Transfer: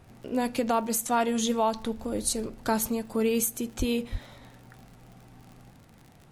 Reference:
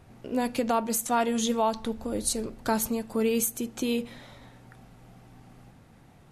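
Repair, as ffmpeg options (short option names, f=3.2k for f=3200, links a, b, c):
-filter_complex "[0:a]adeclick=t=4,asplit=3[a][b][c];[a]afade=t=out:st=3.78:d=0.02[d];[b]highpass=f=140:w=0.5412,highpass=f=140:w=1.3066,afade=t=in:st=3.78:d=0.02,afade=t=out:st=3.9:d=0.02[e];[c]afade=t=in:st=3.9:d=0.02[f];[d][e][f]amix=inputs=3:normalize=0,asplit=3[g][h][i];[g]afade=t=out:st=4.11:d=0.02[j];[h]highpass=f=140:w=0.5412,highpass=f=140:w=1.3066,afade=t=in:st=4.11:d=0.02,afade=t=out:st=4.23:d=0.02[k];[i]afade=t=in:st=4.23:d=0.02[l];[j][k][l]amix=inputs=3:normalize=0"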